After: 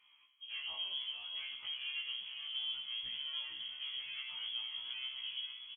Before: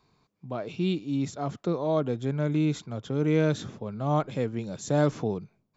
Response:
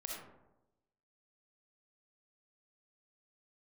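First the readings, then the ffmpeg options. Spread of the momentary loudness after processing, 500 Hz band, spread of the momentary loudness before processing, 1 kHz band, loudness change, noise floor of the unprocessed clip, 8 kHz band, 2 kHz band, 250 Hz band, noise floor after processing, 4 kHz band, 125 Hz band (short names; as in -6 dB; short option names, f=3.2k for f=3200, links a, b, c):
4 LU, under -40 dB, 10 LU, -25.5 dB, -11.0 dB, -74 dBFS, n/a, -4.5 dB, under -40 dB, -67 dBFS, +9.5 dB, under -40 dB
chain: -filter_complex "[0:a]highpass=f=63:w=0.5412,highpass=f=63:w=1.3066,bandreject=f=1.1k:w=10,aecho=1:1:0.9:0.32,bandreject=f=106.5:t=h:w=4,bandreject=f=213:t=h:w=4,bandreject=f=319.5:t=h:w=4,bandreject=f=426:t=h:w=4,bandreject=f=532.5:t=h:w=4,bandreject=f=639:t=h:w=4,bandreject=f=745.5:t=h:w=4,bandreject=f=852:t=h:w=4,bandreject=f=958.5:t=h:w=4,bandreject=f=1.065k:t=h:w=4,bandreject=f=1.1715k:t=h:w=4,bandreject=f=1.278k:t=h:w=4,bandreject=f=1.3845k:t=h:w=4,bandreject=f=1.491k:t=h:w=4,bandreject=f=1.5975k:t=h:w=4,acompressor=threshold=-39dB:ratio=4,asoftclip=type=tanh:threshold=-39.5dB,asplit=7[a][b][c][d][e][f][g];[b]adelay=457,afreqshift=-80,volume=-7.5dB[h];[c]adelay=914,afreqshift=-160,volume=-13dB[i];[d]adelay=1371,afreqshift=-240,volume=-18.5dB[j];[e]adelay=1828,afreqshift=-320,volume=-24dB[k];[f]adelay=2285,afreqshift=-400,volume=-29.6dB[l];[g]adelay=2742,afreqshift=-480,volume=-35.1dB[m];[a][h][i][j][k][l][m]amix=inputs=7:normalize=0,asplit=2[n][o];[1:a]atrim=start_sample=2205,lowpass=3k[p];[o][p]afir=irnorm=-1:irlink=0,volume=0dB[q];[n][q]amix=inputs=2:normalize=0,lowpass=f=2.9k:t=q:w=0.5098,lowpass=f=2.9k:t=q:w=0.6013,lowpass=f=2.9k:t=q:w=0.9,lowpass=f=2.9k:t=q:w=2.563,afreqshift=-3400,afftfilt=real='re*1.73*eq(mod(b,3),0)':imag='im*1.73*eq(mod(b,3),0)':win_size=2048:overlap=0.75"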